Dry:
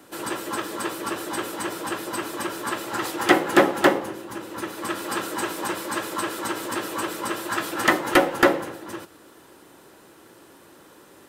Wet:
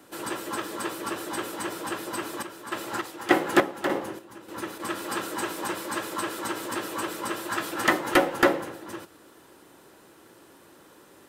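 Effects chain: 2.13–4.80 s: square tremolo 1.7 Hz, depth 60%, duty 50%; trim -3 dB

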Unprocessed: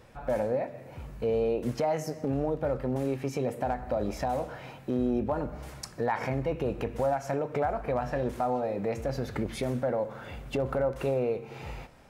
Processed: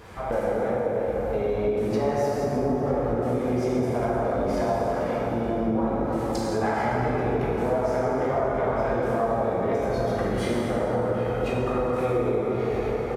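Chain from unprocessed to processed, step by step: plate-style reverb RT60 4.2 s, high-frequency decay 0.45×, DRR -8.5 dB; speed mistake 48 kHz file played as 44.1 kHz; high-pass 46 Hz 6 dB/octave; peaking EQ 1.2 kHz +3.5 dB 1.2 oct; compression 2.5:1, threshold -34 dBFS, peak gain reduction 13 dB; harmony voices -7 st -16 dB, +7 st -15 dB; trim +6.5 dB

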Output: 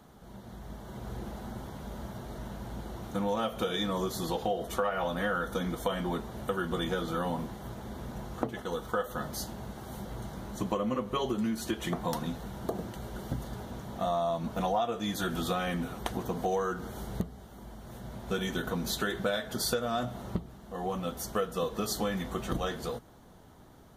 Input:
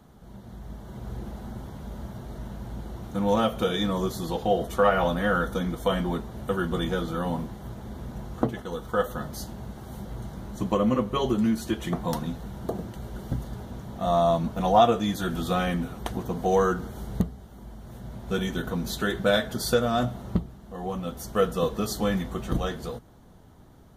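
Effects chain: bass shelf 250 Hz -7 dB; compression 5:1, threshold -29 dBFS, peak gain reduction 13.5 dB; trim +1.5 dB

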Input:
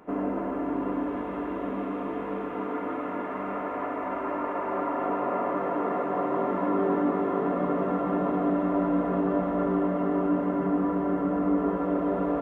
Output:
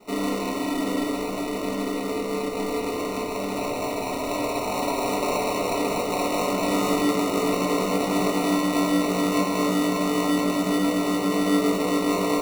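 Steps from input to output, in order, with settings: high-pass 190 Hz 12 dB/octave; sample-and-hold 27×; simulated room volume 170 m³, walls furnished, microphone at 1.4 m

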